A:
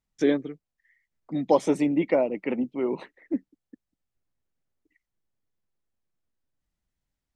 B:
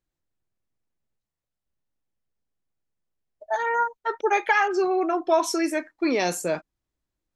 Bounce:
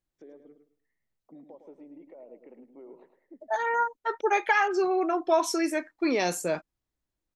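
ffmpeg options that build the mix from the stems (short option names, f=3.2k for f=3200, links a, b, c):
-filter_complex "[0:a]acompressor=threshold=-26dB:ratio=6,alimiter=level_in=4dB:limit=-24dB:level=0:latency=1:release=400,volume=-4dB,bandpass=f=540:t=q:w=1.2:csg=0,volume=-8.5dB,asplit=2[a][b];[b]volume=-8.5dB[c];[1:a]volume=-2.5dB[d];[c]aecho=0:1:107|214|321|428:1|0.23|0.0529|0.0122[e];[a][d][e]amix=inputs=3:normalize=0"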